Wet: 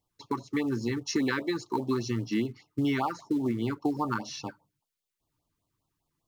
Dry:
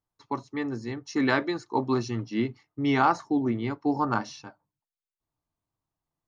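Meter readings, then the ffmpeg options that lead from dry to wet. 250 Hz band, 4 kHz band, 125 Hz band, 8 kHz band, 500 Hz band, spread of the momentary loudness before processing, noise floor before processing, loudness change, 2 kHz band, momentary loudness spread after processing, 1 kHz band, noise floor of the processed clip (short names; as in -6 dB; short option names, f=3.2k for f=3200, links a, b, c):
-1.5 dB, 0.0 dB, -1.0 dB, n/a, -3.0 dB, 11 LU, under -85 dBFS, -3.0 dB, -4.5 dB, 7 LU, -6.5 dB, under -85 dBFS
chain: -filter_complex "[0:a]lowshelf=f=74:g=-2.5,asplit=2[a][b];[b]acrusher=bits=5:mode=log:mix=0:aa=0.000001,volume=-6.5dB[c];[a][c]amix=inputs=2:normalize=0,acompressor=threshold=-30dB:ratio=6,afftfilt=real='re*(1-between(b*sr/1024,570*pow(2000/570,0.5+0.5*sin(2*PI*5*pts/sr))/1.41,570*pow(2000/570,0.5+0.5*sin(2*PI*5*pts/sr))*1.41))':imag='im*(1-between(b*sr/1024,570*pow(2000/570,0.5+0.5*sin(2*PI*5*pts/sr))/1.41,570*pow(2000/570,0.5+0.5*sin(2*PI*5*pts/sr))*1.41))':win_size=1024:overlap=0.75,volume=4.5dB"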